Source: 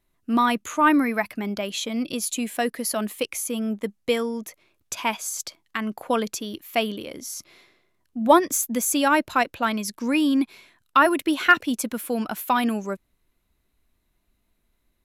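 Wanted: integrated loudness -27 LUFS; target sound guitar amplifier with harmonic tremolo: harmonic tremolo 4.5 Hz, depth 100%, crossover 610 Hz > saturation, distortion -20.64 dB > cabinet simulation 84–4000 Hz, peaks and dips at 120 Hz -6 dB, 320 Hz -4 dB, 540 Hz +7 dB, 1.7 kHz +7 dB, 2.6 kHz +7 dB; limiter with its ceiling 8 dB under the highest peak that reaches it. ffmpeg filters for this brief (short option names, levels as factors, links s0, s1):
-filter_complex "[0:a]alimiter=limit=0.237:level=0:latency=1,acrossover=split=610[s0][s1];[s0]aeval=exprs='val(0)*(1-1/2+1/2*cos(2*PI*4.5*n/s))':c=same[s2];[s1]aeval=exprs='val(0)*(1-1/2-1/2*cos(2*PI*4.5*n/s))':c=same[s3];[s2][s3]amix=inputs=2:normalize=0,asoftclip=threshold=0.141,highpass=84,equalizer=f=120:t=q:w=4:g=-6,equalizer=f=320:t=q:w=4:g=-4,equalizer=f=540:t=q:w=4:g=7,equalizer=f=1700:t=q:w=4:g=7,equalizer=f=2600:t=q:w=4:g=7,lowpass=f=4000:w=0.5412,lowpass=f=4000:w=1.3066,volume=1.41"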